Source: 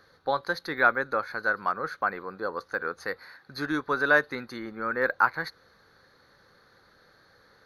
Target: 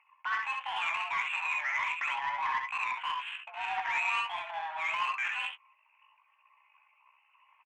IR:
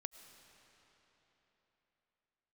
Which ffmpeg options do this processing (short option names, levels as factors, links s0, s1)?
-filter_complex "[0:a]anlmdn=0.00251,asplit=2[s0][s1];[s1]acompressor=threshold=0.0224:ratio=16,volume=1.33[s2];[s0][s2]amix=inputs=2:normalize=0,alimiter=limit=0.15:level=0:latency=1:release=24,asetrate=64194,aresample=44100,atempo=0.686977,asoftclip=type=tanh:threshold=0.0188,highpass=f=530:t=q:w=0.5412,highpass=f=530:t=q:w=1.307,lowpass=f=3000:t=q:w=0.5176,lowpass=f=3000:t=q:w=0.7071,lowpass=f=3000:t=q:w=1.932,afreqshift=310,asplit=2[s3][s4];[s4]adelay=17,volume=0.398[s5];[s3][s5]amix=inputs=2:normalize=0,aecho=1:1:65|78:0.631|0.398,adynamicsmooth=sensitivity=2.5:basefreq=2400,volume=2"